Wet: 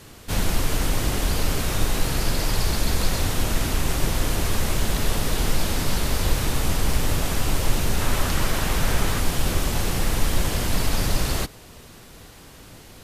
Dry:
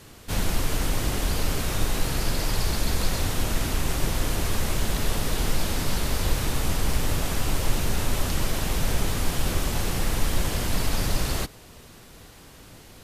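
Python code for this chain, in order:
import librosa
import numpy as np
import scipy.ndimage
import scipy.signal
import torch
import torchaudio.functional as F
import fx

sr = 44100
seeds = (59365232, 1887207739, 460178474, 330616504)

y = fx.peak_eq(x, sr, hz=1400.0, db=4.5, octaves=1.5, at=(8.01, 9.2))
y = F.gain(torch.from_numpy(y), 2.5).numpy()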